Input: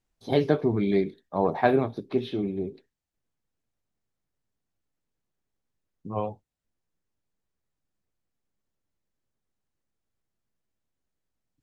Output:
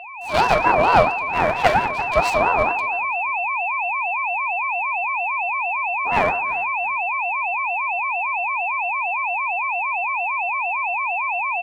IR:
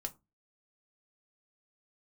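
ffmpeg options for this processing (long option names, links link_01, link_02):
-filter_complex "[0:a]equalizer=frequency=3300:width=5.1:gain=-14.5,asplit=2[link_01][link_02];[link_02]adelay=338,lowpass=frequency=3600:poles=1,volume=-19.5dB,asplit=2[link_03][link_04];[link_04]adelay=338,lowpass=frequency=3600:poles=1,volume=0.22[link_05];[link_01][link_03][link_05]amix=inputs=3:normalize=0[link_06];[1:a]atrim=start_sample=2205,asetrate=25137,aresample=44100[link_07];[link_06][link_07]afir=irnorm=-1:irlink=0,asetrate=38170,aresample=44100,atempo=1.15535,equalizer=frequency=125:width_type=o:width=1:gain=-11,equalizer=frequency=250:width_type=o:width=1:gain=-4,equalizer=frequency=500:width_type=o:width=1:gain=-11,equalizer=frequency=2000:width_type=o:width=1:gain=-3,equalizer=frequency=4000:width_type=o:width=1:gain=9,aeval=exprs='abs(val(0))':channel_layout=same,aeval=exprs='val(0)+0.02*sin(2*PI*1700*n/s)':channel_layout=same,dynaudnorm=framelen=130:gausssize=5:maxgain=14dB,aeval=exprs='val(0)*sin(2*PI*800*n/s+800*0.25/4.4*sin(2*PI*4.4*n/s))':channel_layout=same,volume=3dB"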